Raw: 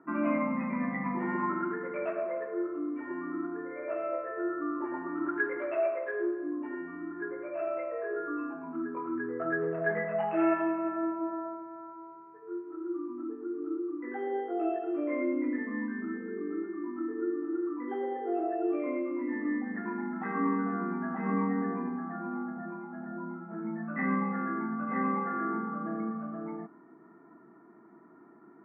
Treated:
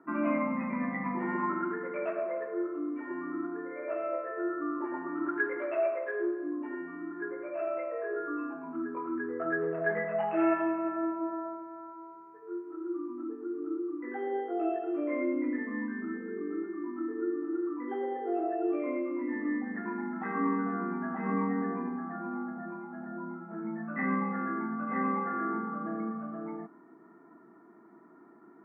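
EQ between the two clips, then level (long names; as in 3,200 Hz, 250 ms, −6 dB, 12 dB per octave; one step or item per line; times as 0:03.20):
high-pass filter 160 Hz 12 dB per octave
0.0 dB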